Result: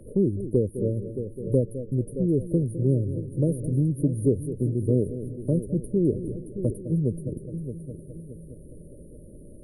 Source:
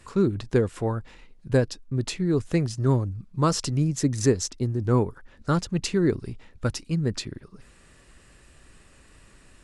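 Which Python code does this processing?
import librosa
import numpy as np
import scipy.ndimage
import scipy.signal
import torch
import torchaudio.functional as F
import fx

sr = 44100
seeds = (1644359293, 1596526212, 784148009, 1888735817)

y = fx.brickwall_bandstop(x, sr, low_hz=630.0, high_hz=9000.0)
y = fx.echo_heads(y, sr, ms=207, heads='first and third', feedback_pct=46, wet_db=-14)
y = fx.band_squash(y, sr, depth_pct=40)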